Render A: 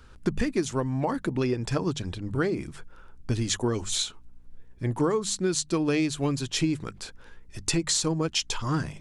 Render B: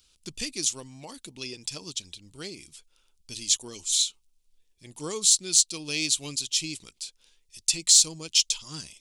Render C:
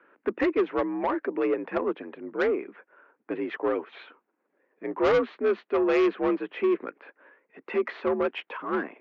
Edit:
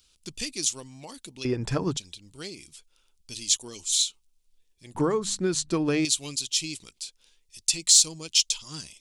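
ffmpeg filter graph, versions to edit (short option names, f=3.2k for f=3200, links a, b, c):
-filter_complex "[0:a]asplit=2[a][b];[1:a]asplit=3[c][d][e];[c]atrim=end=1.452[f];[a]atrim=start=1.448:end=1.972[g];[d]atrim=start=1.968:end=4.952[h];[b]atrim=start=4.948:end=6.052[i];[e]atrim=start=6.048[j];[f][g]acrossfade=d=0.004:c1=hsin:c2=hsin[k];[k][h]acrossfade=d=0.004:c1=hsin:c2=hsin[l];[l][i]acrossfade=d=0.004:c1=hsin:c2=hsin[m];[m][j]acrossfade=d=0.004:c1=hsin:c2=hsin"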